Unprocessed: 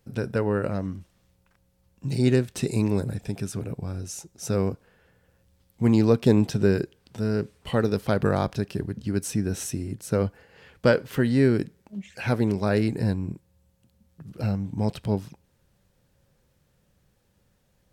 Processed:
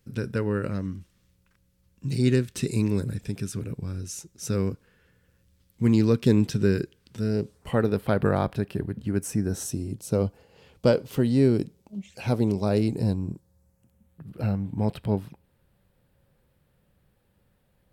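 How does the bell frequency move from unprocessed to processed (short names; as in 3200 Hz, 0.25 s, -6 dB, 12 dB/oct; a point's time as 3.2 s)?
bell -12 dB 0.82 oct
7.19 s 730 Hz
7.83 s 6000 Hz
8.97 s 6000 Hz
9.87 s 1700 Hz
13.11 s 1700 Hz
14.26 s 6200 Hz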